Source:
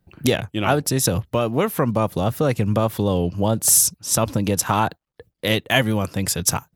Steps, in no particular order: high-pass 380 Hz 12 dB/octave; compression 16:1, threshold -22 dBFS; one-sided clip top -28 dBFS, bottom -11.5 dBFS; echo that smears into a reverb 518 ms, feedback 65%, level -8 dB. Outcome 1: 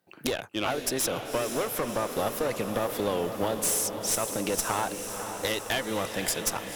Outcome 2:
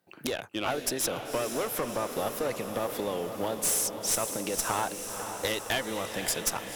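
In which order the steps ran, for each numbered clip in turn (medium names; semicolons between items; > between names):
high-pass > compression > one-sided clip > echo that smears into a reverb; compression > high-pass > one-sided clip > echo that smears into a reverb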